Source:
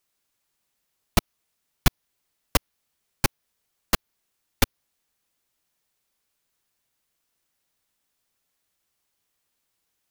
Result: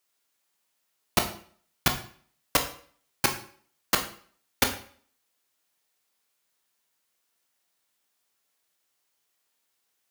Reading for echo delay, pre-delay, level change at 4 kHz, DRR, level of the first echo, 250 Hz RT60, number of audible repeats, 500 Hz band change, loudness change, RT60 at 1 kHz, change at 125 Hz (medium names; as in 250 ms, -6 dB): no echo, 14 ms, +1.0 dB, 4.5 dB, no echo, 0.50 s, no echo, 0.0 dB, -1.0 dB, 0.50 s, -8.0 dB